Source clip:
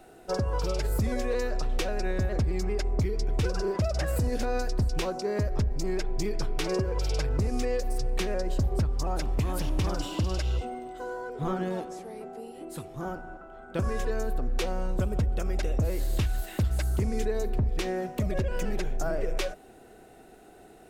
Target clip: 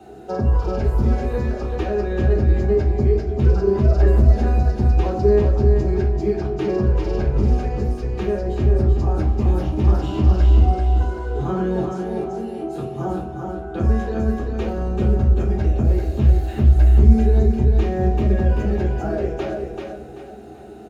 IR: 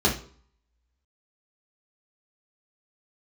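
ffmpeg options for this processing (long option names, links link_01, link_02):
-filter_complex "[0:a]acrossover=split=2800[link_01][link_02];[link_02]acompressor=threshold=-50dB:ratio=4:attack=1:release=60[link_03];[link_01][link_03]amix=inputs=2:normalize=0,alimiter=level_in=0.5dB:limit=-24dB:level=0:latency=1,volume=-0.5dB,aecho=1:1:386|772|1158|1544:0.596|0.191|0.061|0.0195[link_04];[1:a]atrim=start_sample=2205[link_05];[link_04][link_05]afir=irnorm=-1:irlink=0,volume=-8.5dB"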